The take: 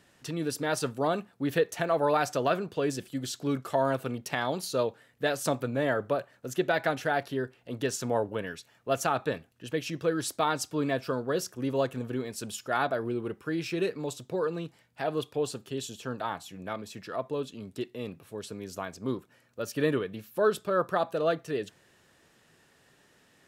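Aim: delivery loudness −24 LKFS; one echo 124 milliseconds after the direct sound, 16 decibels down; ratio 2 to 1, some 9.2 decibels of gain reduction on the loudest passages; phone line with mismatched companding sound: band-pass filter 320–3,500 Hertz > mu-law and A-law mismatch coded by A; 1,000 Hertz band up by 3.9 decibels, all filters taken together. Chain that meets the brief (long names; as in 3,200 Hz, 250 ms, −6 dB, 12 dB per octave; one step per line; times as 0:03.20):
parametric band 1,000 Hz +5.5 dB
downward compressor 2 to 1, threshold −36 dBFS
band-pass filter 320–3,500 Hz
single-tap delay 124 ms −16 dB
mu-law and A-law mismatch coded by A
level +15.5 dB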